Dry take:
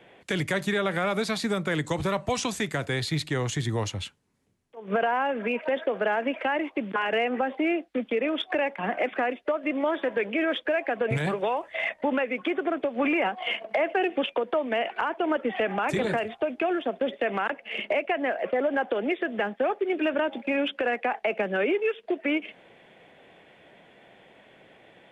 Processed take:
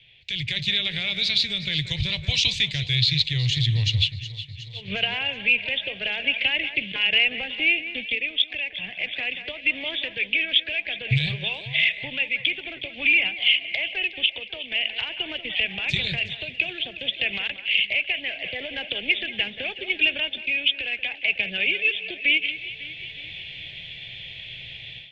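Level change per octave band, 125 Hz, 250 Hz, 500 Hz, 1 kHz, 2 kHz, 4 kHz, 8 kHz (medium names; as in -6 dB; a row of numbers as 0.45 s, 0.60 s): +6.5 dB, -9.0 dB, -13.5 dB, -15.0 dB, +7.0 dB, +15.0 dB, no reading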